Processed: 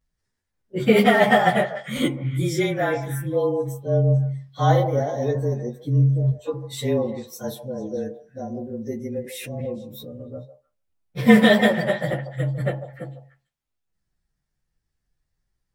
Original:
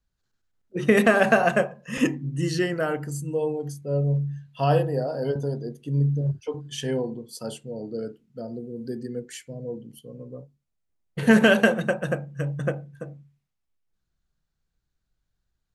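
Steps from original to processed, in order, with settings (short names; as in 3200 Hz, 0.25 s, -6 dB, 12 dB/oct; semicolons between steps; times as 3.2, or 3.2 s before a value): inharmonic rescaling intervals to 108%; delay with a stepping band-pass 0.149 s, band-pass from 710 Hz, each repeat 1.4 oct, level -9 dB; 9.24–10.13 backwards sustainer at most 27 dB/s; gain +5 dB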